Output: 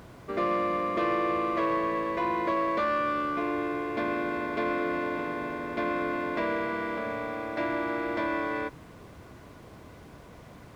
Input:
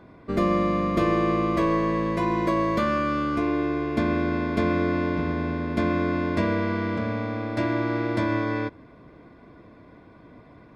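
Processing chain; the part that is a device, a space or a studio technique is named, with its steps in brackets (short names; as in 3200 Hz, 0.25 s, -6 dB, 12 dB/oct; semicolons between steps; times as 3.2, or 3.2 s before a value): aircraft cabin announcement (BPF 420–3200 Hz; soft clip -19 dBFS, distortion -21 dB; brown noise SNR 10 dB); HPF 94 Hz 12 dB/oct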